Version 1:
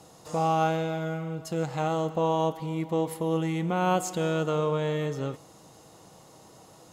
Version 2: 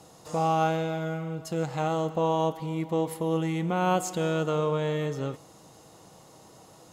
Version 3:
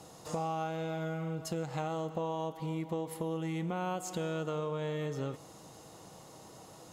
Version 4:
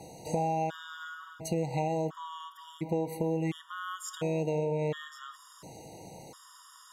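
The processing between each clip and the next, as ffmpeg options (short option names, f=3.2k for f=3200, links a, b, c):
-af anull
-af "acompressor=threshold=-33dB:ratio=5"
-af "afftfilt=real='re*gt(sin(2*PI*0.71*pts/sr)*(1-2*mod(floor(b*sr/1024/950),2)),0)':imag='im*gt(sin(2*PI*0.71*pts/sr)*(1-2*mod(floor(b*sr/1024/950),2)),0)':win_size=1024:overlap=0.75,volume=5.5dB"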